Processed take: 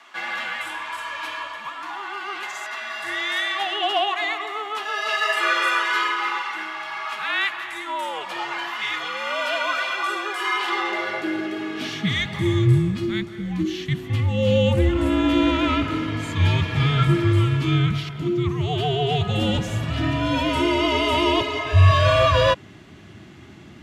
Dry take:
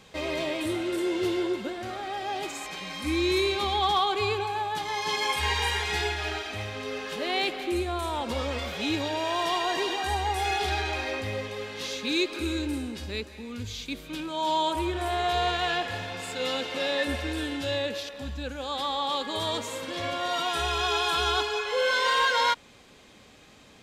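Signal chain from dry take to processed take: tone controls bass +6 dB, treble -8 dB; frequency shift -420 Hz; high-pass sweep 1 kHz -> 88 Hz, 10.55–12.96 s; trim +6.5 dB

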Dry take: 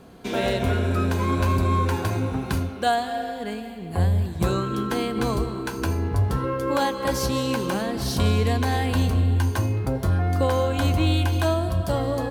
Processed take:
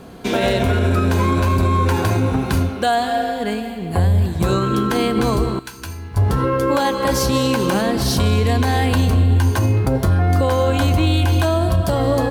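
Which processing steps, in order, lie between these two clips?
5.59–6.17 s: amplifier tone stack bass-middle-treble 5-5-5; peak limiter -17 dBFS, peak gain reduction 5.5 dB; trim +8.5 dB

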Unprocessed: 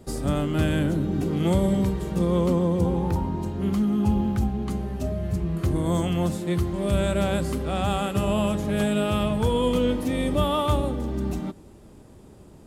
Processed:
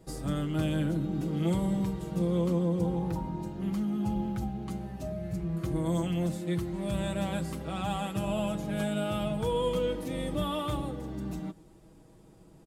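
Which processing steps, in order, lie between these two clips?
comb 6.2 ms, depth 64%; trim -8.5 dB

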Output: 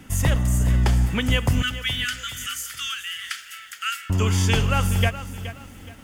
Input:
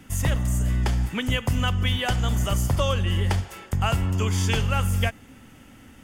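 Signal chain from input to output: 1.62–4.10 s: steep high-pass 1.3 kHz 96 dB/octave; bit-crushed delay 422 ms, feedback 35%, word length 8-bit, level -12.5 dB; trim +3 dB

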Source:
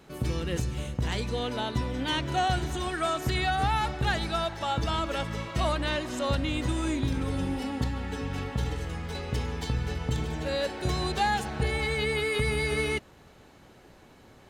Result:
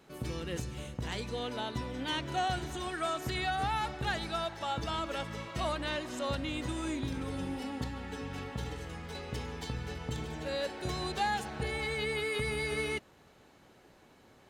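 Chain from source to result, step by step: bass shelf 110 Hz -7.5 dB; trim -5 dB

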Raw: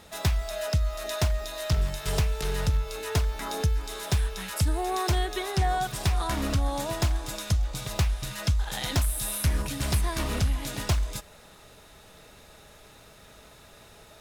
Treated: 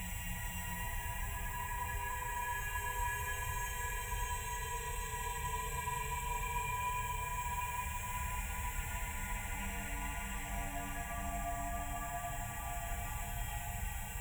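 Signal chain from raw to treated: frequency axis rescaled in octaves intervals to 127%; upward compressor, threshold -31 dBFS; Paulstretch 5.2×, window 1.00 s, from 4.44 s; static phaser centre 1.3 kHz, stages 6; reverberation RT60 1.0 s, pre-delay 3 ms, DRR 2 dB; trim -4.5 dB

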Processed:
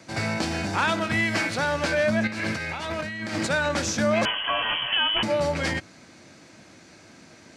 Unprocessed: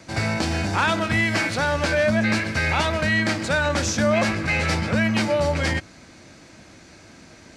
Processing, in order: high-pass 110 Hz 12 dB/octave; 2.27–3.47 s: compressor with a negative ratio -28 dBFS, ratio -1; 4.25–5.23 s: frequency inversion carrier 3.2 kHz; trim -2.5 dB

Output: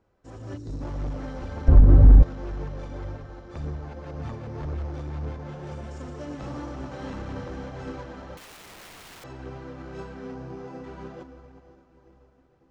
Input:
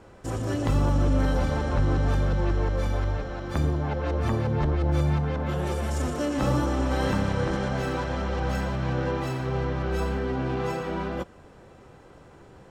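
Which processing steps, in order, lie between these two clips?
on a send at -8 dB: reverberation RT60 4.1 s, pre-delay 118 ms; 0.57–0.82 s: on the sum: time-frequency box 480–3600 Hz -18 dB; 10.34–10.84 s: treble shelf 2.3 kHz -11 dB; echo that smears into a reverb 465 ms, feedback 68%, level -15.5 dB; in parallel at -11 dB: sample-rate reducer 5.5 kHz, jitter 0%; on the sum: overload inside the chain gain 18.5 dB; low-pass 7.1 kHz 24 dB/octave; phaser 1.9 Hz, delay 4.4 ms, feedback 25%; 1.68–2.23 s: tilt EQ -4.5 dB/octave; 8.37–9.24 s: integer overflow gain 25.5 dB; loudness maximiser 0 dB; upward expansion 1.5:1, over -42 dBFS; trim -3 dB

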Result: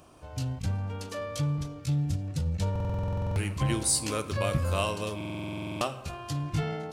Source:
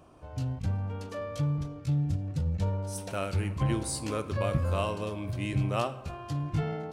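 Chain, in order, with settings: treble shelf 2.5 kHz +10.5 dB; buffer glitch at 2.71/5.16 s, samples 2048, times 13

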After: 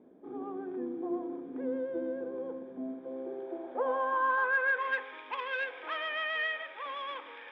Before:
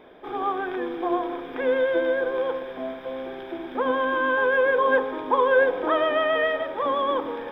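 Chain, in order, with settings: saturation -15 dBFS, distortion -19 dB; band-pass sweep 240 Hz -> 2.4 kHz, 2.83–5.09 s

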